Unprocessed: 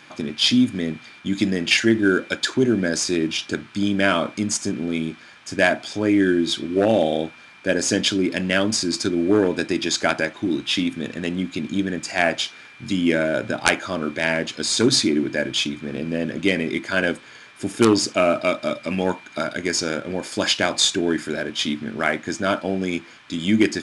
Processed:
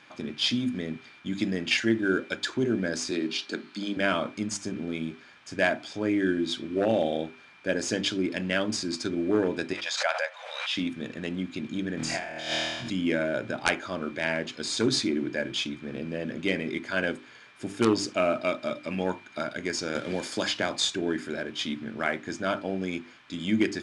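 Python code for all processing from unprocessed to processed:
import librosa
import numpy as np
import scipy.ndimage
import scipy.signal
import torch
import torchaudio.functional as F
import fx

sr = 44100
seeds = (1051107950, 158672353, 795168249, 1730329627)

y = fx.chain(x, sr, fx.steep_highpass(hz=180.0, slope=36),
    fx.peak_eq(hz=4300.0, db=10.5, octaves=0.24), at=(3.11, 3.97))
y = fx.chain(y, sr, fx.brickwall_highpass(low_hz=480.0),
    fx.high_shelf(hz=9300.0, db=-7.5),
    fx.pre_swell(db_per_s=52.0), at=(9.73, 10.76))
y = fx.chain(y, sr, fx.room_flutter(wall_m=4.3, rt60_s=1.0),
    fx.over_compress(threshold_db=-23.0, ratio=-0.5),
    fx.transient(attack_db=-3, sustain_db=6), at=(11.97, 12.9))
y = fx.chain(y, sr, fx.peak_eq(hz=2600.0, db=-3.5, octaves=0.34),
    fx.band_squash(depth_pct=70), at=(19.95, 20.76))
y = fx.high_shelf(y, sr, hz=8900.0, db=-11.5)
y = fx.hum_notches(y, sr, base_hz=50, count=8)
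y = F.gain(torch.from_numpy(y), -6.5).numpy()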